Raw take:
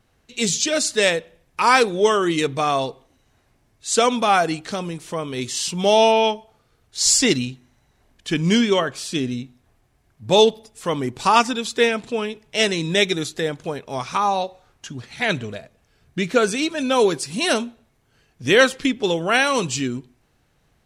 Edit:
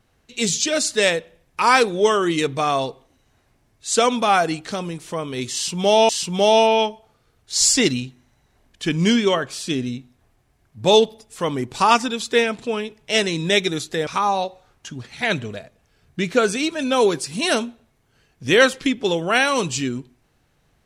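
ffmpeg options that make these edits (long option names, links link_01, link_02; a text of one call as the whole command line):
ffmpeg -i in.wav -filter_complex "[0:a]asplit=3[link_01][link_02][link_03];[link_01]atrim=end=6.092[link_04];[link_02]atrim=start=5.538:end=13.522[link_05];[link_03]atrim=start=14.058[link_06];[link_04][link_05]acrossfade=duration=0.004:curve1=hsin:curve2=hsin[link_07];[link_07][link_06]acrossfade=duration=0.004:curve1=hsin:curve2=hsin" out.wav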